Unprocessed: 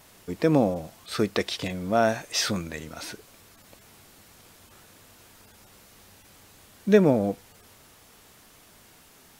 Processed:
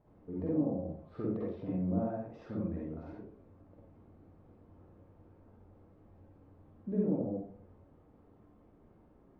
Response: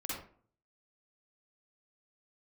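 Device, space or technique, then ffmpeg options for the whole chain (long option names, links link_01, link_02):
television next door: -filter_complex "[0:a]acompressor=threshold=-28dB:ratio=4,lowpass=570[link_01];[1:a]atrim=start_sample=2205[link_02];[link_01][link_02]afir=irnorm=-1:irlink=0,volume=-4dB"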